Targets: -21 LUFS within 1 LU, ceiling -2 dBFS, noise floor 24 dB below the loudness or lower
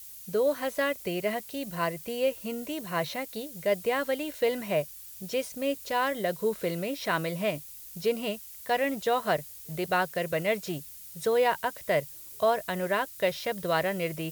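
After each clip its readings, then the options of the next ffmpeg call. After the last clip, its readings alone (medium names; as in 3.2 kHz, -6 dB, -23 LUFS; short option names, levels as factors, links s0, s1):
noise floor -46 dBFS; noise floor target -54 dBFS; loudness -30.0 LUFS; peak level -13.0 dBFS; loudness target -21.0 LUFS
-> -af "afftdn=nr=8:nf=-46"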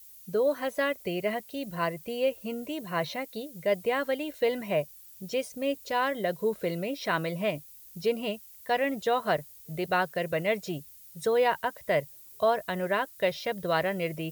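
noise floor -51 dBFS; noise floor target -54 dBFS
-> -af "afftdn=nr=6:nf=-51"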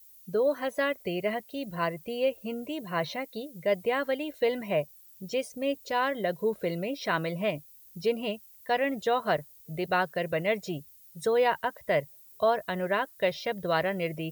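noise floor -54 dBFS; loudness -30.0 LUFS; peak level -13.0 dBFS; loudness target -21.0 LUFS
-> -af "volume=2.82"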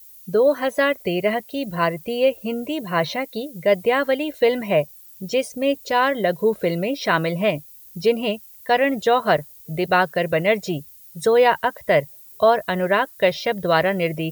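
loudness -21.0 LUFS; peak level -4.0 dBFS; noise floor -45 dBFS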